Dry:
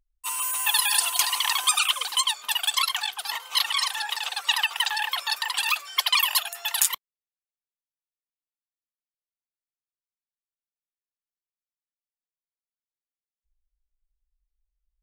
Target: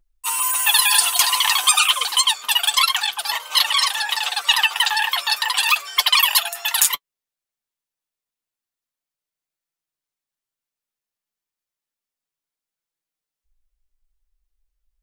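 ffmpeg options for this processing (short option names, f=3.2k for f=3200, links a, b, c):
-filter_complex "[0:a]acontrast=64,asettb=1/sr,asplit=3[a][b][c];[a]atrim=end=3.194[d];[b]atrim=start=3.19:end=4.09,asetpts=PTS-STARTPTS,afade=t=in:d=0.004:c=qsin,afade=t=out:st=0.896:d=0.004:c=qsin,aeval=exprs='val(0)+0.00251*sin(2*PI*600*n/s)':c=same[e];[c]atrim=start=4.086[f];[d][e]acrossfade=d=0.004:c1=hsin:c2=qsin[g];[g][f]acrossfade=d=0.004:c1=qsin:c2=hsin,flanger=delay=5.8:depth=3.6:regen=38:speed=0.31:shape=triangular,volume=4.5dB"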